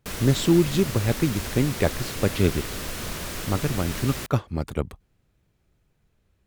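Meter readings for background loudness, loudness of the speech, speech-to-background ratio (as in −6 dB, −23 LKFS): −32.0 LKFS, −25.0 LKFS, 7.0 dB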